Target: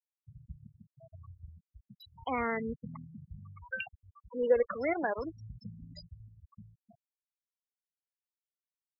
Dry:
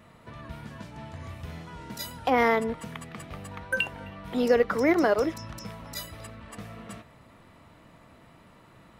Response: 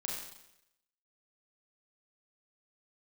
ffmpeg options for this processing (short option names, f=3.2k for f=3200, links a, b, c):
-af "aphaser=in_gain=1:out_gain=1:delay=2.1:decay=0.55:speed=0.34:type=triangular,acrusher=bits=9:dc=4:mix=0:aa=0.000001,afftfilt=real='re*gte(hypot(re,im),0.0794)':imag='im*gte(hypot(re,im),0.0794)':win_size=1024:overlap=0.75,volume=-9dB"